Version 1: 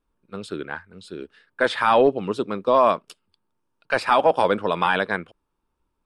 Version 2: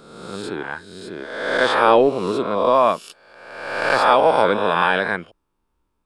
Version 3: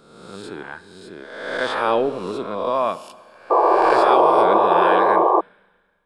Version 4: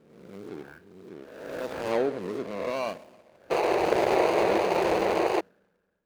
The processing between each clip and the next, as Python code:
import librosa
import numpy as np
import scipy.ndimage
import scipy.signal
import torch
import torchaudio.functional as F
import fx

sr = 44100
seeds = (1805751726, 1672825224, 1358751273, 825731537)

y1 = fx.spec_swells(x, sr, rise_s=1.17)
y2 = fx.rev_schroeder(y1, sr, rt60_s=1.7, comb_ms=27, drr_db=15.0)
y2 = fx.spec_paint(y2, sr, seeds[0], shape='noise', start_s=3.5, length_s=1.91, low_hz=320.0, high_hz=1200.0, level_db=-10.0)
y2 = y2 * 10.0 ** (-5.5 / 20.0)
y3 = scipy.ndimage.median_filter(y2, 41, mode='constant')
y3 = fx.highpass(y3, sr, hz=94.0, slope=6)
y3 = y3 * 10.0 ** (-4.0 / 20.0)